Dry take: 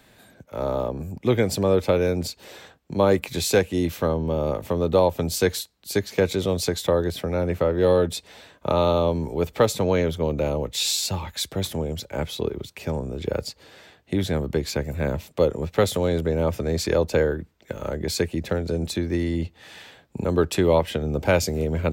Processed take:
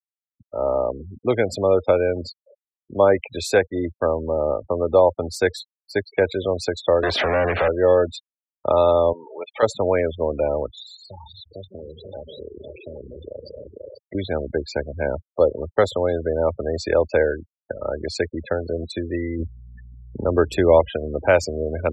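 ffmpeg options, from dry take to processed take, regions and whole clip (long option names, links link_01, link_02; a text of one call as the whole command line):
ffmpeg -i in.wav -filter_complex "[0:a]asettb=1/sr,asplit=3[link_01][link_02][link_03];[link_01]atrim=end=7.034[link_04];[link_02]atrim=start=7.03:end=7.68,asetpts=PTS-STARTPTS,afade=type=in:duration=0.004:curve=qsin,afade=type=out:start_time=0.646:duration=0.004:curve=qsin,aemphasis=mode=reproduction:type=50fm,acrossover=split=150|3000[link_05][link_06][link_07];[link_06]acompressor=threshold=-35dB:ratio=3:attack=3.2:release=140:knee=2.83:detection=peak[link_08];[link_05][link_08][link_07]amix=inputs=3:normalize=0,asplit=2[link_09][link_10];[link_10]highpass=frequency=720:poles=1,volume=36dB,asoftclip=type=tanh:threshold=-14.5dB[link_11];[link_09][link_11]amix=inputs=2:normalize=0,lowpass=frequency=6700:poles=1,volume=-6dB[link_12];[link_03]atrim=start=7.676[link_13];[link_04][link_12]acrossfade=duration=0.004:curve1=hsin:curve2=qsin[link_14];[link_14][link_13]acrossfade=duration=0.004:curve1=qsin:curve2=hsin,asettb=1/sr,asplit=3[link_15][link_16][link_17];[link_15]atrim=end=9.134[link_18];[link_16]atrim=start=9.13:end=9.63,asetpts=PTS-STARTPTS,afade=type=in:duration=0.004:curve=qsin,afade=type=out:start_time=0.496:duration=0.004:curve=qsin,aeval=exprs='val(0)+0.5*0.0501*sgn(val(0))':channel_layout=same,highpass=frequency=1500:poles=1,equalizer=frequency=2000:width=0.78:gain=-2.5[link_19];[link_17]atrim=start=9.626[link_20];[link_18][link_19]acrossfade=duration=0.004:curve1=hsin:curve2=qsin[link_21];[link_21][link_20]acrossfade=duration=0.004:curve1=qsin:curve2=hsin,asettb=1/sr,asplit=3[link_22][link_23][link_24];[link_22]atrim=end=10.664[link_25];[link_23]atrim=start=10.66:end=14.15,asetpts=PTS-STARTPTS,afade=type=in:duration=0.004:curve=qsin,afade=type=out:start_time=3.486:duration=0.004:curve=qsin,aecho=1:1:150|225|276|489|531|583:0.188|0.224|0.158|0.335|0.1|0.126,atrim=end_sample=153909,acompressor=threshold=-33dB:ratio=4:attack=3.2:release=140:knee=1:detection=peak[link_26];[link_24]atrim=start=14.146[link_27];[link_25][link_26]acrossfade=duration=0.004:curve1=hsin:curve2=qsin[link_28];[link_28][link_27]acrossfade=duration=0.004:curve1=qsin:curve2=hsin,asettb=1/sr,asplit=3[link_29][link_30][link_31];[link_29]atrim=end=19.394[link_32];[link_30]atrim=start=19.39:end=20.89,asetpts=PTS-STARTPTS,afade=type=in:duration=0.004:curve=qsin,afade=type=out:start_time=1.496:duration=0.004:curve=qsin,aeval=exprs='val(0)+0.00891*(sin(2*PI*60*n/s)+sin(2*PI*2*60*n/s)/2+sin(2*PI*3*60*n/s)/3+sin(2*PI*4*60*n/s)/4+sin(2*PI*5*60*n/s)/5)':channel_layout=same,lowshelf=frequency=380:gain=4.5[link_33];[link_31]atrim=start=20.886[link_34];[link_32][link_33]acrossfade=duration=0.004:curve1=hsin:curve2=qsin[link_35];[link_35][link_34]acrossfade=duration=0.004:curve1=qsin:curve2=hsin,bass=frequency=250:gain=-2,treble=frequency=4000:gain=-3,afftfilt=real='re*gte(hypot(re,im),0.0398)':imag='im*gte(hypot(re,im),0.0398)':win_size=1024:overlap=0.75,equalizer=frequency=160:width_type=o:width=0.67:gain=-9,equalizer=frequency=630:width_type=o:width=0.67:gain=6,equalizer=frequency=1600:width_type=o:width=0.67:gain=5" out.wav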